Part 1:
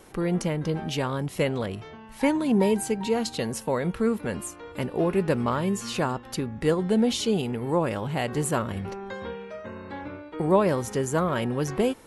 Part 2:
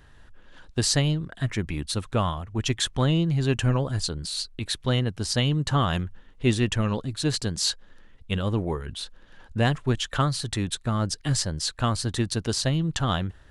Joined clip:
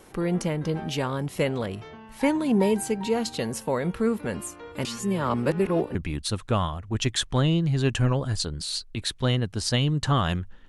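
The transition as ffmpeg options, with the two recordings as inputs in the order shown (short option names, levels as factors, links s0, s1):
-filter_complex "[0:a]apad=whole_dur=10.68,atrim=end=10.68,asplit=2[s0][s1];[s0]atrim=end=4.852[s2];[s1]atrim=start=4.848:end=5.952,asetpts=PTS-STARTPTS,areverse[s3];[1:a]atrim=start=1.588:end=6.32[s4];[s2][s3]acrossfade=d=0.004:c1=hsin:c2=hsin[s5];[s5][s4]acrossfade=d=0.004:c1=hsin:c2=hsin"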